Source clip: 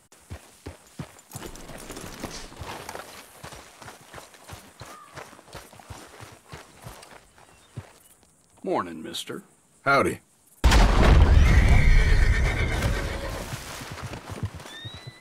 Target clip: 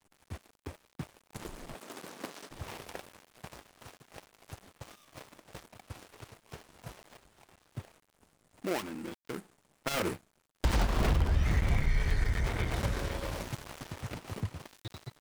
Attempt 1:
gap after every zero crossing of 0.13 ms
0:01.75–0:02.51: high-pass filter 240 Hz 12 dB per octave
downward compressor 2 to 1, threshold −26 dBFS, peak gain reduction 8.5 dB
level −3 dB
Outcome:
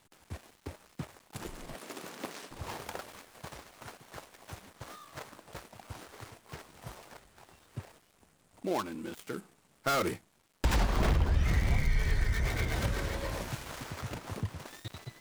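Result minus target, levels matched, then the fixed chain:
gap after every zero crossing: distortion −6 dB
gap after every zero crossing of 0.35 ms
0:01.75–0:02.51: high-pass filter 240 Hz 12 dB per octave
downward compressor 2 to 1, threshold −26 dBFS, peak gain reduction 8.5 dB
level −3 dB

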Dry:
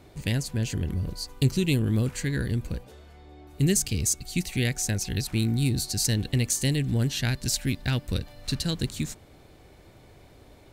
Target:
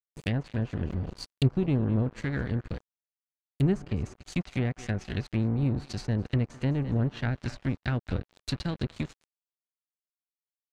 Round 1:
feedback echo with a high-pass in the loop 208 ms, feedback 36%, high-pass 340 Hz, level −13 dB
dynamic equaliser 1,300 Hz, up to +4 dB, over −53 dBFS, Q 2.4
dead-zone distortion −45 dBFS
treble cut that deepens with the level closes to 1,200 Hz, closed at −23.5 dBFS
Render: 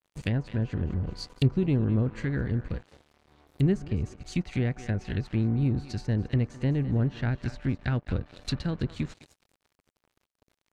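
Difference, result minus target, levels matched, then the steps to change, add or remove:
dead-zone distortion: distortion −8 dB
change: dead-zone distortion −35.5 dBFS

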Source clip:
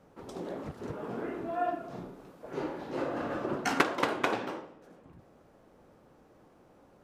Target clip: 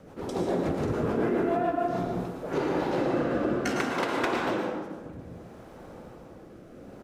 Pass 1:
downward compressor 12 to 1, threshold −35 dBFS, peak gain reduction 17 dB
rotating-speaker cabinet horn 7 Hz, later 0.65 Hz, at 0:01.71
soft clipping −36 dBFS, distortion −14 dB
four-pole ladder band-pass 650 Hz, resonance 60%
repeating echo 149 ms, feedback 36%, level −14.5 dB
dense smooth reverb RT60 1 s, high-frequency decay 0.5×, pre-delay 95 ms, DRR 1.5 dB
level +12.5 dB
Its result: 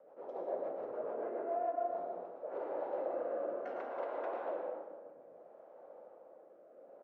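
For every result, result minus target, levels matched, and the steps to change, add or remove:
soft clipping: distortion +6 dB; 500 Hz band +3.0 dB
change: soft clipping −29.5 dBFS, distortion −21 dB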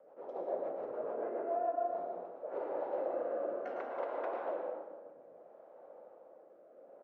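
500 Hz band +3.0 dB
remove: four-pole ladder band-pass 650 Hz, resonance 60%

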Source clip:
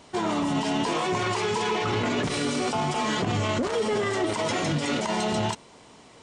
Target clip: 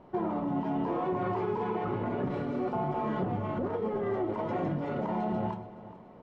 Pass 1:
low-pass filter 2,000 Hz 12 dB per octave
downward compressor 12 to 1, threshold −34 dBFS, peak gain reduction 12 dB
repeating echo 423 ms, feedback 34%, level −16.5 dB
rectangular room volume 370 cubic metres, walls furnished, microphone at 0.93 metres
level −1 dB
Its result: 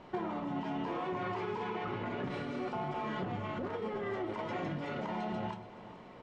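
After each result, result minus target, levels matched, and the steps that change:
2,000 Hz band +7.5 dB; downward compressor: peak gain reduction +6 dB
change: low-pass filter 960 Hz 12 dB per octave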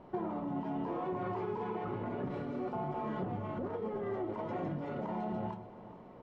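downward compressor: peak gain reduction +6 dB
change: downward compressor 12 to 1, threshold −27.5 dBFS, peak gain reduction 6 dB

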